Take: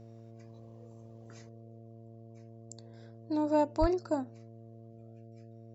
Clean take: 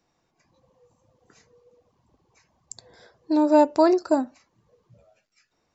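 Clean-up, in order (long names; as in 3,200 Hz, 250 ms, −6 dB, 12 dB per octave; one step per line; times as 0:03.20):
clipped peaks rebuilt −15.5 dBFS
hum removal 113.7 Hz, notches 6
0:01.49: level correction +10.5 dB
0:03.80–0:03.92: high-pass filter 140 Hz 24 dB per octave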